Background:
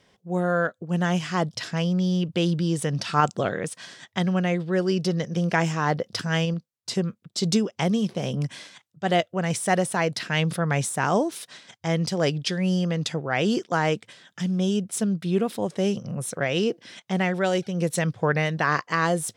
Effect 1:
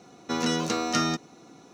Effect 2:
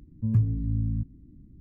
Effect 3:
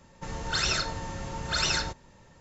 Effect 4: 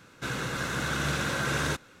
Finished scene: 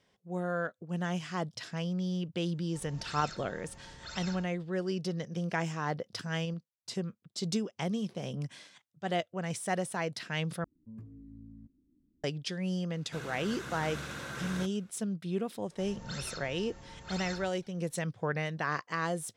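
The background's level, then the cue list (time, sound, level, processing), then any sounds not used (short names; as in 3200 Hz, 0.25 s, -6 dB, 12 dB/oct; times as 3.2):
background -10 dB
2.53 add 3 -17 dB
10.64 replace with 2 -16 dB + resonant low shelf 190 Hz -9.5 dB, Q 1.5
12.9 add 4 -11.5 dB
15.56 add 3 -15 dB
not used: 1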